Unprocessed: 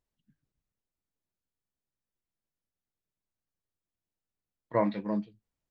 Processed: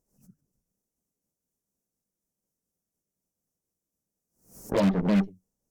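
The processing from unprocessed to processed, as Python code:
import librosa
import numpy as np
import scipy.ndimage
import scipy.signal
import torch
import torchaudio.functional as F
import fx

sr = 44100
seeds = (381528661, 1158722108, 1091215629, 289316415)

p1 = fx.pitch_ramps(x, sr, semitones=-3.0, every_ms=339)
p2 = fx.curve_eq(p1, sr, hz=(110.0, 190.0, 310.0, 470.0, 3700.0, 5700.0), db=(0, 10, 5, 7, -19, 7))
p3 = fx.cheby_harmonics(p2, sr, harmonics=(8,), levels_db=(-17,), full_scale_db=-17.5)
p4 = 10.0 ** (-38.0 / 20.0) * np.tanh(p3 / 10.0 ** (-38.0 / 20.0))
p5 = p3 + (p4 * librosa.db_to_amplitude(-4.5))
y = fx.pre_swell(p5, sr, db_per_s=130.0)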